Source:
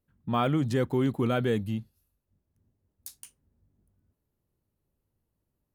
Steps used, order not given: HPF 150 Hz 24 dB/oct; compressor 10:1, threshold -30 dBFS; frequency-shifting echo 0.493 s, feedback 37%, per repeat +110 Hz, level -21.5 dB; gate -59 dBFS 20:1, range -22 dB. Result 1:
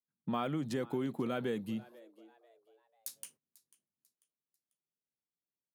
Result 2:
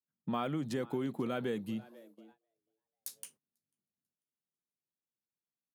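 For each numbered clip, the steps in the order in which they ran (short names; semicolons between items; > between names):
compressor > gate > HPF > frequency-shifting echo; compressor > frequency-shifting echo > gate > HPF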